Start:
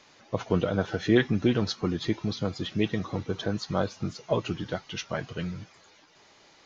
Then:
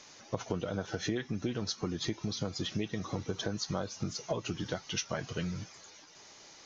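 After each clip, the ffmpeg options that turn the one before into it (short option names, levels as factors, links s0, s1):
-af "equalizer=f=6000:t=o:w=0.66:g=10.5,acompressor=threshold=0.0316:ratio=10"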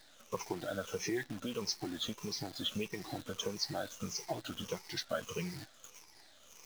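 -af "afftfilt=real='re*pow(10,18/40*sin(2*PI*(0.79*log(max(b,1)*sr/1024/100)/log(2)-(-1.6)*(pts-256)/sr)))':imag='im*pow(10,18/40*sin(2*PI*(0.79*log(max(b,1)*sr/1024/100)/log(2)-(-1.6)*(pts-256)/sr)))':win_size=1024:overlap=0.75,lowshelf=f=170:g=-10.5,acrusher=bits=8:dc=4:mix=0:aa=0.000001,volume=0.562"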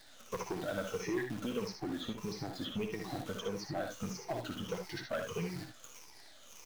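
-filter_complex "[0:a]acrossover=split=2100[s0][s1];[s0]asoftclip=type=hard:threshold=0.0224[s2];[s1]acompressor=threshold=0.00282:ratio=6[s3];[s2][s3]amix=inputs=2:normalize=0,aecho=1:1:60|76:0.398|0.376,volume=1.26"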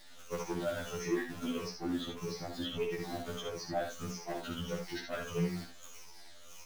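-af "afftfilt=real='re*2*eq(mod(b,4),0)':imag='im*2*eq(mod(b,4),0)':win_size=2048:overlap=0.75,volume=1.5"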